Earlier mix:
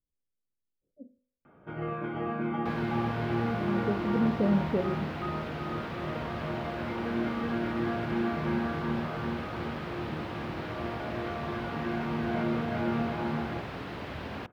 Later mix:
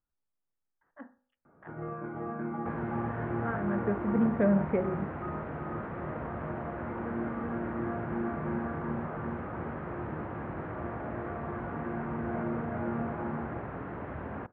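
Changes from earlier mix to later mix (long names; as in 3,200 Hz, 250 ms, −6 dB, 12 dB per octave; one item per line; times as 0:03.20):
speech: remove Butterworth low-pass 570 Hz 72 dB per octave
first sound −4.0 dB
master: add low-pass filter 1,700 Hz 24 dB per octave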